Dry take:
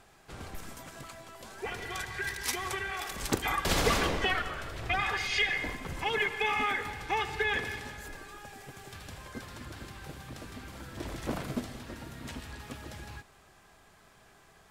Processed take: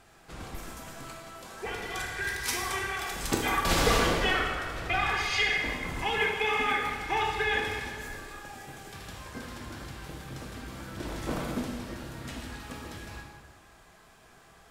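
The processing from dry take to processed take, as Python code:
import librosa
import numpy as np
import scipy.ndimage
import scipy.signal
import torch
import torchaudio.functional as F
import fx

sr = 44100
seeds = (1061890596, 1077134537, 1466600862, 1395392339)

y = fx.rev_plate(x, sr, seeds[0], rt60_s=1.5, hf_ratio=0.8, predelay_ms=0, drr_db=0.0)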